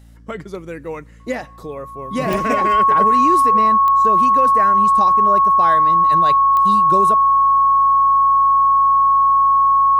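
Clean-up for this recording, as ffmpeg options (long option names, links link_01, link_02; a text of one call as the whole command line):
ffmpeg -i in.wav -af "adeclick=threshold=4,bandreject=frequency=57:width_type=h:width=4,bandreject=frequency=114:width_type=h:width=4,bandreject=frequency=171:width_type=h:width=4,bandreject=frequency=228:width_type=h:width=4,bandreject=frequency=285:width_type=h:width=4,bandreject=frequency=1100:width=30" out.wav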